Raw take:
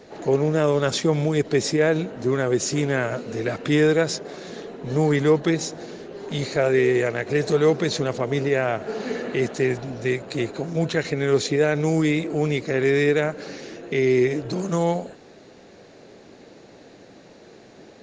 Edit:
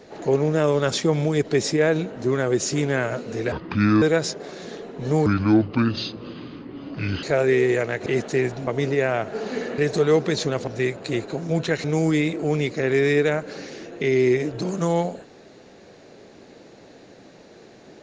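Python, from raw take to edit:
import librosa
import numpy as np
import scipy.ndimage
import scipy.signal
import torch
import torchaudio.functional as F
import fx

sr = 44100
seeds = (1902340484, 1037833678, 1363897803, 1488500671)

y = fx.edit(x, sr, fx.speed_span(start_s=3.52, length_s=0.35, speed=0.7),
    fx.speed_span(start_s=5.11, length_s=1.38, speed=0.7),
    fx.swap(start_s=7.32, length_s=0.89, other_s=9.32, other_length_s=0.61),
    fx.cut(start_s=11.1, length_s=0.65), tone=tone)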